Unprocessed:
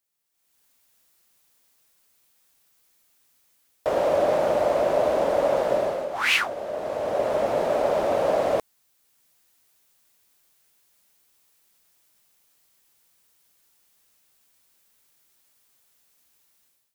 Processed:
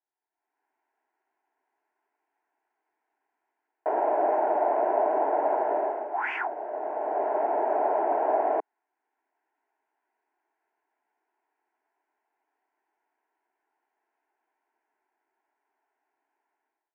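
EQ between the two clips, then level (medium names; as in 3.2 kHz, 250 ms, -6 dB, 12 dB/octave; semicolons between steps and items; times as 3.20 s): high-pass 320 Hz 24 dB/octave; resonant low-pass 1.1 kHz, resonance Q 1.8; static phaser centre 800 Hz, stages 8; 0.0 dB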